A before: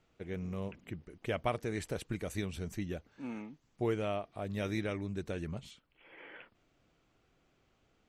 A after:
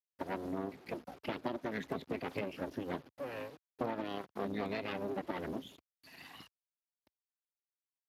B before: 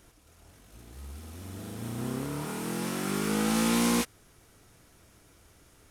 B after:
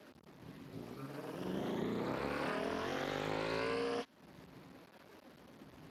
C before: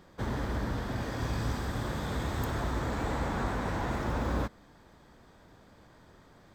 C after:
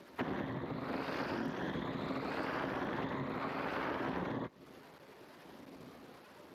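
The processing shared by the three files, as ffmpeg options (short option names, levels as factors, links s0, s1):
-filter_complex "[0:a]afftfilt=real='re*pow(10,22/40*sin(2*PI*(1.1*log(max(b,1)*sr/1024/100)/log(2)-(0.77)*(pts-256)/sr)))':imag='im*pow(10,22/40*sin(2*PI*(1.1*log(max(b,1)*sr/1024/100)/log(2)-(0.77)*(pts-256)/sr)))':win_size=1024:overlap=0.75,acrossover=split=280|1800[s0][s1][s2];[s0]acontrast=38[s3];[s3][s1][s2]amix=inputs=3:normalize=0,tremolo=f=270:d=0.462,afftdn=nr=19:nf=-49,aeval=exprs='abs(val(0))':c=same,lowpass=4300,equalizer=f=100:t=o:w=0.76:g=-10,acrusher=bits=7:dc=4:mix=0:aa=0.000001,acompressor=threshold=0.0251:ratio=16,lowshelf=f=130:g=-3.5,volume=1.5" -ar 32000 -c:a libspeex -b:a 28k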